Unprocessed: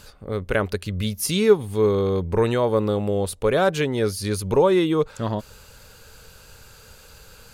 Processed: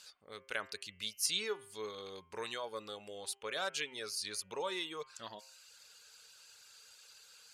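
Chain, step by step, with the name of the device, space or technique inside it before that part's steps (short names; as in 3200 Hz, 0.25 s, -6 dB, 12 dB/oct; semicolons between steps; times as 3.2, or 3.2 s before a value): piezo pickup straight into a mixer (LPF 5600 Hz 12 dB/oct; differentiator); reverb removal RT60 0.61 s; de-hum 132.8 Hz, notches 24; gain +1 dB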